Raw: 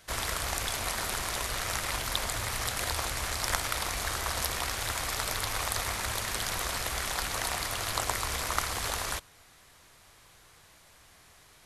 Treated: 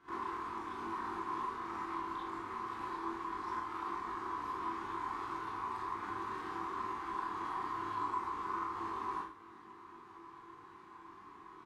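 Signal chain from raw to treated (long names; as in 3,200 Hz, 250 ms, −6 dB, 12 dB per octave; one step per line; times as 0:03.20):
spectral tilt −1.5 dB per octave
downward compressor 5 to 1, threshold −41 dBFS, peak gain reduction 16.5 dB
pair of resonant band-passes 590 Hz, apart 1.6 octaves
double-tracking delay 21 ms −5 dB
four-comb reverb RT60 0.51 s, combs from 30 ms, DRR −6.5 dB
level +7.5 dB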